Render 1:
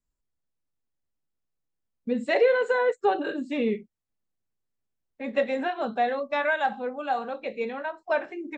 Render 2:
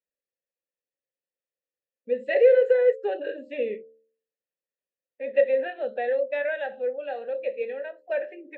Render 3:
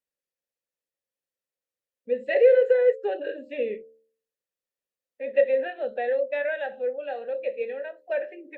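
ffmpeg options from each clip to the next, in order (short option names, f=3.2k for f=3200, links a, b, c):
-filter_complex "[0:a]asplit=3[a][b][c];[a]bandpass=f=530:t=q:w=8,volume=0dB[d];[b]bandpass=f=1.84k:t=q:w=8,volume=-6dB[e];[c]bandpass=f=2.48k:t=q:w=8,volume=-9dB[f];[d][e][f]amix=inputs=3:normalize=0,bandreject=f=74.72:t=h:w=4,bandreject=f=149.44:t=h:w=4,bandreject=f=224.16:t=h:w=4,bandreject=f=298.88:t=h:w=4,bandreject=f=373.6:t=h:w=4,bandreject=f=448.32:t=h:w=4,bandreject=f=523.04:t=h:w=4,bandreject=f=597.76:t=h:w=4,volume=8dB"
-ar 48000 -c:a libopus -b:a 64k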